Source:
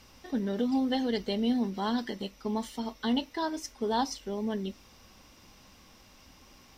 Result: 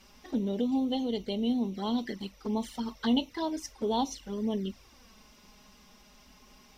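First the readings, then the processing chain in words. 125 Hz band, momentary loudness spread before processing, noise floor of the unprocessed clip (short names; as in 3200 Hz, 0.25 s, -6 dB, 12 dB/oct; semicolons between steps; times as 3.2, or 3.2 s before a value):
+0.5 dB, 8 LU, -57 dBFS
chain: envelope flanger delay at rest 5.7 ms, full sweep at -27.5 dBFS; vocal rider 2 s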